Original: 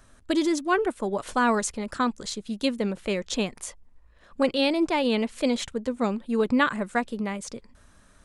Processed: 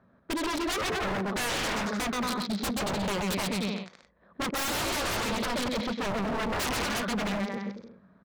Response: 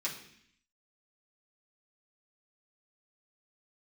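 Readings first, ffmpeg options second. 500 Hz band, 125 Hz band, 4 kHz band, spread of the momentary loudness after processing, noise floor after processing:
-6.0 dB, +3.0 dB, +1.0 dB, 6 LU, -63 dBFS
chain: -af "highshelf=f=2.1k:g=12,adynamicsmooth=sensitivity=2:basefreq=850,highpass=150,equalizer=f=190:t=q:w=4:g=10,equalizer=f=290:t=q:w=4:g=-5,equalizer=f=2.9k:t=q:w=4:g=-8,lowpass=f=4.5k:w=0.5412,lowpass=f=4.5k:w=1.3066,aecho=1:1:130|227.5|300.6|355.5|396.6:0.631|0.398|0.251|0.158|0.1,aeval=exprs='0.0562*(abs(mod(val(0)/0.0562+3,4)-2)-1)':c=same"

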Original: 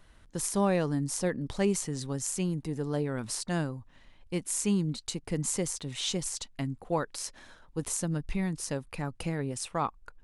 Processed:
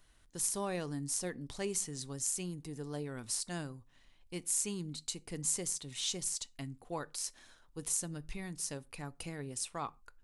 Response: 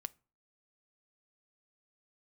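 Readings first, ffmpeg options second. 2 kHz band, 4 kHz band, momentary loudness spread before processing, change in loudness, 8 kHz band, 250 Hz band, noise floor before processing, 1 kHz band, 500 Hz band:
-7.5 dB, -3.5 dB, 9 LU, -5.5 dB, -0.5 dB, -11.5 dB, -58 dBFS, -9.0 dB, -10.0 dB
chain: -filter_complex "[0:a]highshelf=f=3.2k:g=11[a];[1:a]atrim=start_sample=2205,afade=t=out:st=0.19:d=0.01,atrim=end_sample=8820[b];[a][b]afir=irnorm=-1:irlink=0,volume=-7dB"

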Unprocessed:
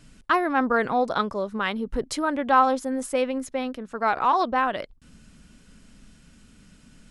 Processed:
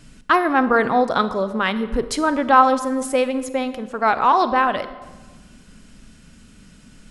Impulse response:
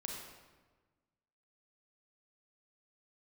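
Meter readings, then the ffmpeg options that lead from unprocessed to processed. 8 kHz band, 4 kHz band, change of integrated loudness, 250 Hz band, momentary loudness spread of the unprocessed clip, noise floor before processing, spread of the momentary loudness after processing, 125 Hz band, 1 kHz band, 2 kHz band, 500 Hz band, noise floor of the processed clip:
+5.5 dB, +5.5 dB, +5.5 dB, +5.5 dB, 10 LU, -54 dBFS, 10 LU, n/a, +5.5 dB, +5.5 dB, +5.5 dB, -48 dBFS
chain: -filter_complex "[0:a]asplit=2[a][b];[1:a]atrim=start_sample=2205[c];[b][c]afir=irnorm=-1:irlink=0,volume=-6.5dB[d];[a][d]amix=inputs=2:normalize=0,volume=3dB"

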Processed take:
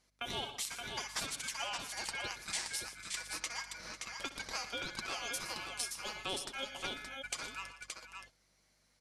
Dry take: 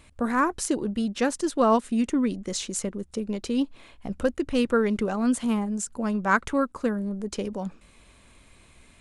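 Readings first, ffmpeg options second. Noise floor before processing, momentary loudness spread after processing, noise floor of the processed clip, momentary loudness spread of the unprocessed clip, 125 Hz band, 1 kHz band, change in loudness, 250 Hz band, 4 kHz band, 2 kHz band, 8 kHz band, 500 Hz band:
-56 dBFS, 6 LU, -73 dBFS, 9 LU, -18.5 dB, -15.0 dB, -13.0 dB, -29.5 dB, +1.0 dB, -7.5 dB, -5.0 dB, -21.5 dB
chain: -filter_complex "[0:a]bandpass=f=4.5k:t=q:w=1.2:csg=0,aecho=1:1:6.7:0.48,aeval=exprs='val(0)*sin(2*PI*1900*n/s)':c=same,aeval=exprs='val(0)+0.000282*(sin(2*PI*50*n/s)+sin(2*PI*2*50*n/s)/2+sin(2*PI*3*50*n/s)/3+sin(2*PI*4*50*n/s)/4+sin(2*PI*5*50*n/s)/5)':c=same,agate=range=-20dB:threshold=-59dB:ratio=16:detection=peak,acompressor=threshold=-48dB:ratio=6,asplit=2[a][b];[b]aecho=0:1:63|113|120|155|497|573:0.168|0.141|0.168|0.141|0.158|0.562[c];[a][c]amix=inputs=2:normalize=0,volume=11dB"

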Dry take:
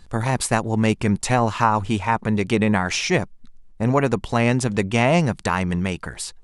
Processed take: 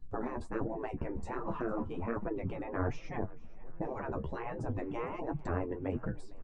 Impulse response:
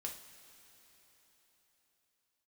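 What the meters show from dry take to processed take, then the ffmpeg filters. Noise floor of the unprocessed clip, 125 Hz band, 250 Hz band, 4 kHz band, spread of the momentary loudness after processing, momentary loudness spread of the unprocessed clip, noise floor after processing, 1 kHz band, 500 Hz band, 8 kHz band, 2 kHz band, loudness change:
-47 dBFS, -17.5 dB, -16.5 dB, -32.0 dB, 5 LU, 6 LU, -44 dBFS, -18.0 dB, -14.5 dB, under -35 dB, -21.5 dB, -17.5 dB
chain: -filter_complex "[0:a]afftdn=nr=14:nf=-33,acrossover=split=460|1500[a][b][c];[c]acompressor=threshold=-44dB:ratio=4[d];[a][b][d]amix=inputs=3:normalize=0,flanger=delay=6.7:depth=8.5:regen=47:speed=0.36:shape=sinusoidal,afftfilt=real='re*lt(hypot(re,im),0.141)':imag='im*lt(hypot(re,im),0.141)':win_size=1024:overlap=0.75,lowpass=f=8k:w=0.5412,lowpass=f=8k:w=1.3066,highshelf=f=2.2k:g=-7.5,asplit=2[e][f];[f]asplit=4[g][h][i][j];[g]adelay=457,afreqshift=34,volume=-21.5dB[k];[h]adelay=914,afreqshift=68,volume=-26.9dB[l];[i]adelay=1371,afreqshift=102,volume=-32.2dB[m];[j]adelay=1828,afreqshift=136,volume=-37.6dB[n];[k][l][m][n]amix=inputs=4:normalize=0[o];[e][o]amix=inputs=2:normalize=0,aeval=exprs='val(0)+0.000355*(sin(2*PI*60*n/s)+sin(2*PI*2*60*n/s)/2+sin(2*PI*3*60*n/s)/3+sin(2*PI*4*60*n/s)/4+sin(2*PI*5*60*n/s)/5)':c=same,tiltshelf=f=860:g=8.5,flanger=delay=6:depth=7.5:regen=23:speed=1.3:shape=sinusoidal,crystalizer=i=1:c=0,volume=1.5dB"

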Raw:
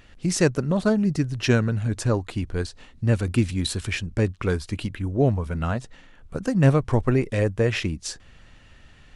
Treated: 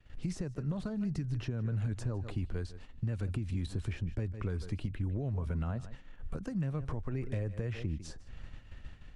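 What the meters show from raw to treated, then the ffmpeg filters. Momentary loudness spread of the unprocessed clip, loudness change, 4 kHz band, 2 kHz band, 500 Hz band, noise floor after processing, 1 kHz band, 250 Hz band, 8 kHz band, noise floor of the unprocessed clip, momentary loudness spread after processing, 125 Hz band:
10 LU, -13.0 dB, -19.5 dB, -19.0 dB, -19.0 dB, -51 dBFS, -17.5 dB, -14.0 dB, under -20 dB, -51 dBFS, 15 LU, -10.5 dB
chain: -filter_complex "[0:a]highshelf=f=5k:g=-6.5,aecho=1:1:150:0.1,acompressor=threshold=-22dB:ratio=12,lowshelf=f=140:g=9,alimiter=limit=-23dB:level=0:latency=1:release=474,agate=range=-33dB:threshold=-36dB:ratio=3:detection=peak,acrossover=split=160|1100[a][b][c];[a]acompressor=threshold=-33dB:ratio=4[d];[b]acompressor=threshold=-38dB:ratio=4[e];[c]acompressor=threshold=-51dB:ratio=4[f];[d][e][f]amix=inputs=3:normalize=0"

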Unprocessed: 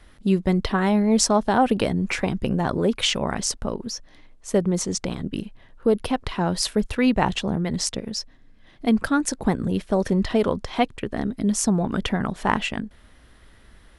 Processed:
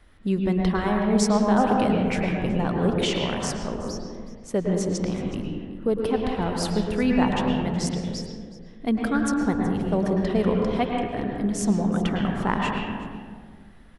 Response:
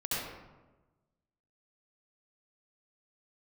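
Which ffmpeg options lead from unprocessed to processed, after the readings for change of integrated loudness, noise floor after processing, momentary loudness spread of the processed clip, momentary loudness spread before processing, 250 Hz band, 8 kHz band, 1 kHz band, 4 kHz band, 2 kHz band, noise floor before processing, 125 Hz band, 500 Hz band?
-1.0 dB, -46 dBFS, 12 LU, 10 LU, 0.0 dB, -7.5 dB, -1.0 dB, -5.0 dB, -2.5 dB, -52 dBFS, 0.0 dB, -1.0 dB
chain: -filter_complex "[0:a]aecho=1:1:372:0.126,asplit=2[a][b];[1:a]atrim=start_sample=2205,asetrate=27342,aresample=44100,lowpass=3.5k[c];[b][c]afir=irnorm=-1:irlink=0,volume=-7dB[d];[a][d]amix=inputs=2:normalize=0,volume=-7dB"

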